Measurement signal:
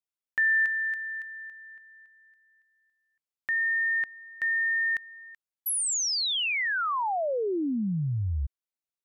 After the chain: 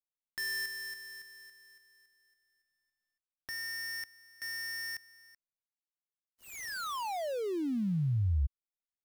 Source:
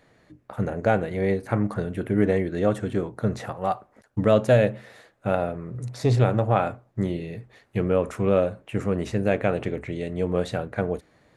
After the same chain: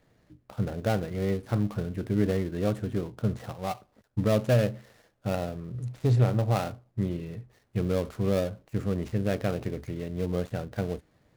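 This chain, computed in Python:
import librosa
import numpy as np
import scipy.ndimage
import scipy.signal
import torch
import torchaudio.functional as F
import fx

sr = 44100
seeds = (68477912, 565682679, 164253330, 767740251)

y = fx.dead_time(x, sr, dead_ms=0.16)
y = fx.low_shelf(y, sr, hz=210.0, db=9.0)
y = y * 10.0 ** (-8.0 / 20.0)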